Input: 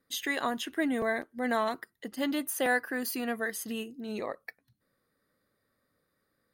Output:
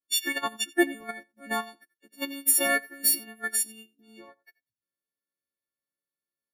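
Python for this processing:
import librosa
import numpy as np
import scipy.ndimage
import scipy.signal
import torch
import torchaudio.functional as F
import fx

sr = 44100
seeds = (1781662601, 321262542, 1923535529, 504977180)

p1 = fx.freq_snap(x, sr, grid_st=4)
p2 = fx.dynamic_eq(p1, sr, hz=470.0, q=2.1, threshold_db=-46.0, ratio=4.0, max_db=-4)
p3 = fx.level_steps(p2, sr, step_db=14)
p4 = p2 + (p3 * librosa.db_to_amplitude(1.0))
p5 = fx.small_body(p4, sr, hz=(340.0, 1000.0, 2600.0), ring_ms=100, db=9)
p6 = p5 + fx.echo_single(p5, sr, ms=87, db=-10.5, dry=0)
y = fx.upward_expand(p6, sr, threshold_db=-38.0, expansion=2.5)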